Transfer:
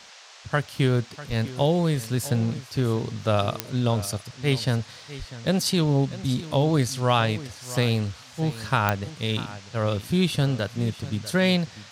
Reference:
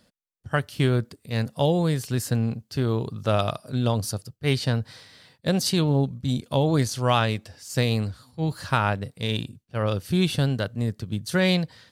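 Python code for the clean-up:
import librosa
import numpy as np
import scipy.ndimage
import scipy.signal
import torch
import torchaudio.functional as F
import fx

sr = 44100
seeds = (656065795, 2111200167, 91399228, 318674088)

y = fx.fix_declick_ar(x, sr, threshold=10.0)
y = fx.highpass(y, sr, hz=140.0, slope=24, at=(1.28, 1.4), fade=0.02)
y = fx.highpass(y, sr, hz=140.0, slope=24, at=(5.18, 5.3), fade=0.02)
y = fx.noise_reduce(y, sr, print_start_s=0.0, print_end_s=0.5, reduce_db=12.0)
y = fx.fix_echo_inverse(y, sr, delay_ms=646, level_db=-16.0)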